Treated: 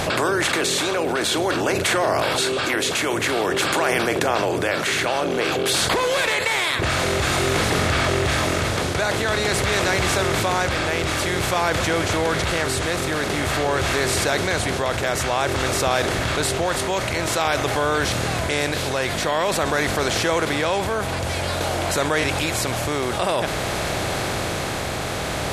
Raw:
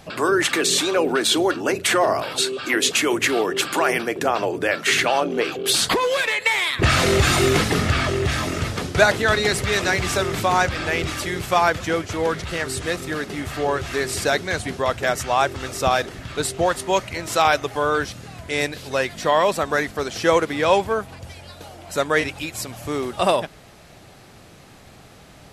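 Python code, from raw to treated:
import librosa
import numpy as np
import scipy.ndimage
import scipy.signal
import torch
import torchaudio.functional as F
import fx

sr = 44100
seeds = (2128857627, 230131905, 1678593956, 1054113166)

y = fx.bin_compress(x, sr, power=0.6)
y = y * (1.0 - 0.56 / 2.0 + 0.56 / 2.0 * np.cos(2.0 * np.pi * 0.5 * (np.arange(len(y)) / sr)))
y = fx.env_flatten(y, sr, amount_pct=70)
y = y * librosa.db_to_amplitude(-7.0)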